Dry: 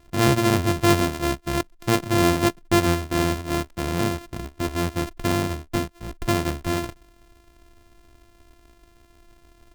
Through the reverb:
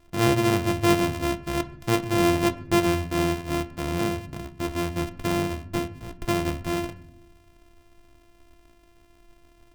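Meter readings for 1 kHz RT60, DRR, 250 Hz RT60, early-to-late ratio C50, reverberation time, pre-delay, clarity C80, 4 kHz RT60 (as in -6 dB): 0.60 s, 8.0 dB, 1.3 s, 16.5 dB, 0.75 s, 6 ms, 19.5 dB, 0.50 s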